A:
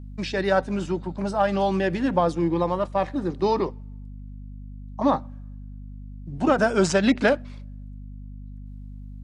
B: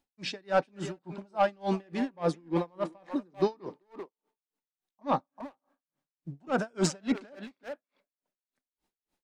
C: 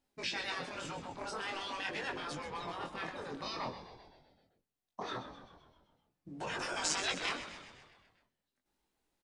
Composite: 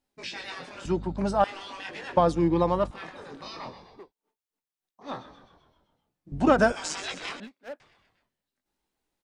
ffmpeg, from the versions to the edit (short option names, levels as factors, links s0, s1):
-filter_complex "[0:a]asplit=3[s0][s1][s2];[1:a]asplit=2[s3][s4];[2:a]asplit=6[s5][s6][s7][s8][s9][s10];[s5]atrim=end=0.852[s11];[s0]atrim=start=0.848:end=1.442[s12];[s6]atrim=start=1.438:end=2.172[s13];[s1]atrim=start=2.168:end=2.912[s14];[s7]atrim=start=2.908:end=4.13[s15];[s3]atrim=start=3.89:end=5.2[s16];[s8]atrim=start=4.96:end=6.322[s17];[s2]atrim=start=6.318:end=6.722[s18];[s9]atrim=start=6.718:end=7.402[s19];[s4]atrim=start=7.398:end=7.802[s20];[s10]atrim=start=7.798[s21];[s11][s12]acrossfade=d=0.004:c1=hsin:c2=hsin[s22];[s22][s13]acrossfade=d=0.004:c1=hsin:c2=hsin[s23];[s23][s14]acrossfade=d=0.004:c1=hsin:c2=hsin[s24];[s24][s15]acrossfade=d=0.004:c1=hsin:c2=hsin[s25];[s25][s16]acrossfade=d=0.24:c1=tri:c2=tri[s26];[s26][s17]acrossfade=d=0.24:c1=tri:c2=tri[s27];[s27][s18]acrossfade=d=0.004:c1=hsin:c2=hsin[s28];[s28][s19]acrossfade=d=0.004:c1=hsin:c2=hsin[s29];[s29][s20]acrossfade=d=0.004:c1=hsin:c2=hsin[s30];[s30][s21]acrossfade=d=0.004:c1=hsin:c2=hsin"